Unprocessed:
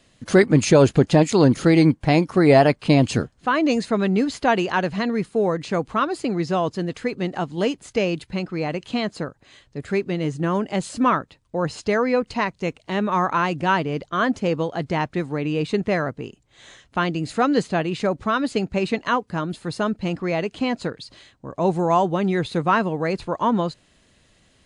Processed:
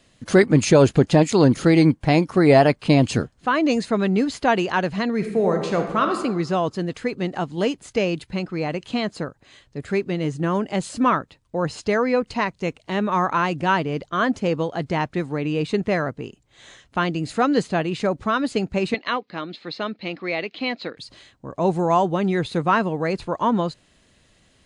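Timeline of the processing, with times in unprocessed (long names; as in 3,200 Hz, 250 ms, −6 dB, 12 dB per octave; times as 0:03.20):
0:05.15–0:06.17: thrown reverb, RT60 1 s, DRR 4 dB
0:18.94–0:20.97: loudspeaker in its box 310–4,600 Hz, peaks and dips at 420 Hz −4 dB, 640 Hz −3 dB, 940 Hz −6 dB, 1,500 Hz −4 dB, 2,200 Hz +6 dB, 4,000 Hz +7 dB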